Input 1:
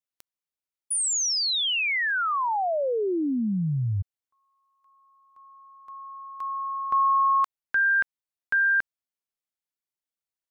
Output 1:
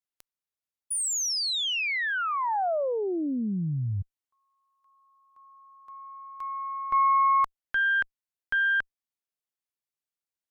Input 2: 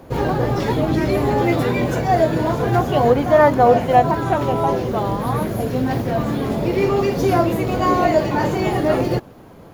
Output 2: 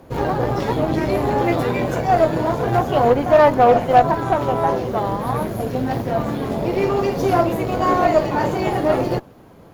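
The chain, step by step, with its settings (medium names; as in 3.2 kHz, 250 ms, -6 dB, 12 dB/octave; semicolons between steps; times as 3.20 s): Chebyshev shaper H 6 -22 dB, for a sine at -1.5 dBFS; dynamic bell 730 Hz, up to +4 dB, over -26 dBFS, Q 0.9; trim -3 dB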